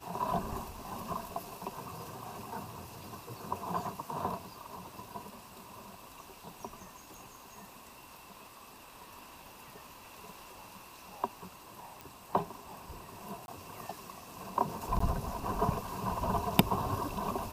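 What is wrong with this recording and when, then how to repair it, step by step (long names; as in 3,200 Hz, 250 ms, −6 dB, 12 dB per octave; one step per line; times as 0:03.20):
0:12.01: click
0:13.46–0:13.48: drop-out 21 ms
0:14.99–0:15.00: drop-out 14 ms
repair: click removal
repair the gap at 0:13.46, 21 ms
repair the gap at 0:14.99, 14 ms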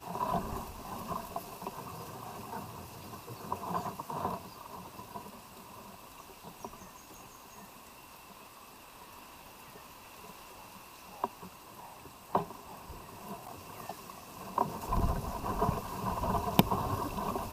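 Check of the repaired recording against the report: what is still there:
none of them is left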